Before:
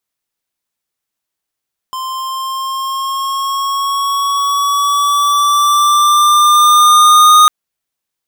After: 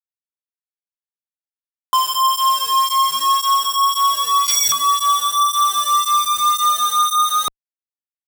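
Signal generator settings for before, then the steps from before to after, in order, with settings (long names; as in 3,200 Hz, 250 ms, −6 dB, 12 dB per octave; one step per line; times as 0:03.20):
pitch glide with a swell square, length 5.55 s, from 1,040 Hz, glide +3 semitones, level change +16.5 dB, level −5 dB
time-frequency box erased 0:03.76–0:04.73, 1,100–4,600 Hz
comparator with hysteresis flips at −31 dBFS
through-zero flanger with one copy inverted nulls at 1.9 Hz, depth 1.1 ms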